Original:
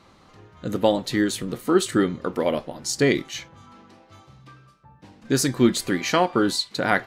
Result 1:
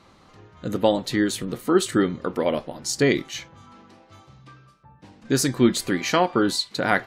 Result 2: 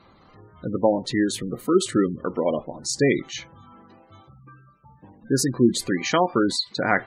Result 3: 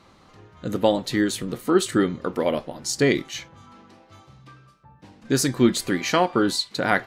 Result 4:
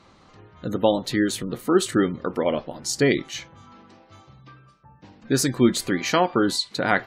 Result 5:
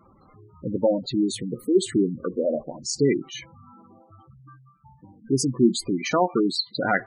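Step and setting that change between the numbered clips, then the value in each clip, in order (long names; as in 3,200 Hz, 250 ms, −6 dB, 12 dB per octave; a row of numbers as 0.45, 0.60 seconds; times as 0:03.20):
gate on every frequency bin, under each frame's peak: −50, −20, −60, −35, −10 decibels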